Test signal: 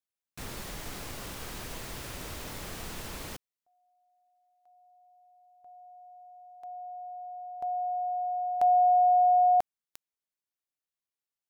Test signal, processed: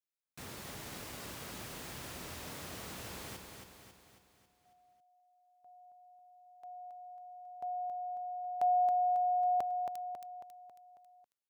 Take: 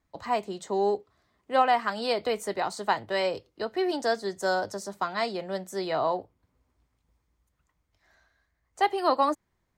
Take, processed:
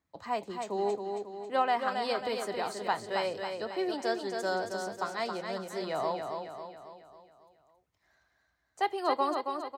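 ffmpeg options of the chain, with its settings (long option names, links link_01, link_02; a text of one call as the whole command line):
ffmpeg -i in.wav -af "highpass=77,aecho=1:1:273|546|819|1092|1365|1638:0.531|0.271|0.138|0.0704|0.0359|0.0183,volume=-5.5dB" out.wav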